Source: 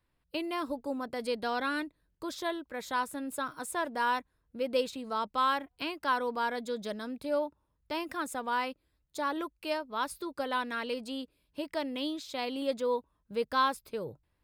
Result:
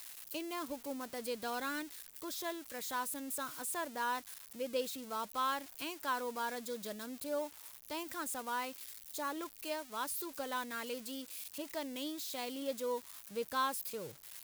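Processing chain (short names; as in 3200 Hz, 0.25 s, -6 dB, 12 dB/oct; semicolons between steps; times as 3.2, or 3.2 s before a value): switching spikes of -30 dBFS; gain -7 dB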